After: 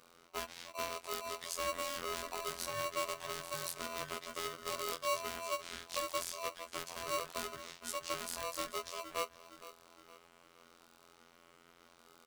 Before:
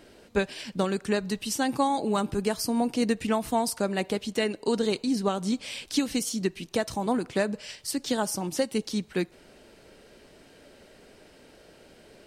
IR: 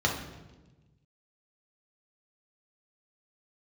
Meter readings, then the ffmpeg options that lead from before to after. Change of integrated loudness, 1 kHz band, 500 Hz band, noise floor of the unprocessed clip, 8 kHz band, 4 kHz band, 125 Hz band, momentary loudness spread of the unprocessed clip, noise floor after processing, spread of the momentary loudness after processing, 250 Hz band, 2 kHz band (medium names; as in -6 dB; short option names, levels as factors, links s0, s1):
-11.5 dB, -8.0 dB, -13.0 dB, -55 dBFS, -7.5 dB, -7.5 dB, -20.0 dB, 5 LU, -64 dBFS, 8 LU, -27.0 dB, -8.0 dB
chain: -filter_complex "[0:a]asplit=2[s0][s1];[s1]adelay=464,lowpass=f=4600:p=1,volume=0.158,asplit=2[s2][s3];[s3]adelay=464,lowpass=f=4600:p=1,volume=0.46,asplit=2[s4][s5];[s5]adelay=464,lowpass=f=4600:p=1,volume=0.46,asplit=2[s6][s7];[s7]adelay=464,lowpass=f=4600:p=1,volume=0.46[s8];[s0][s2][s4][s6][s8]amix=inputs=5:normalize=0,acrossover=split=440|2800[s9][s10][s11];[s10]aeval=exprs='(mod(29.9*val(0)+1,2)-1)/29.9':c=same[s12];[s9][s12][s11]amix=inputs=3:normalize=0,afftfilt=real='hypot(re,im)*cos(PI*b)':imag='0':win_size=2048:overlap=0.75,aeval=exprs='val(0)*sgn(sin(2*PI*840*n/s))':c=same,volume=0.447"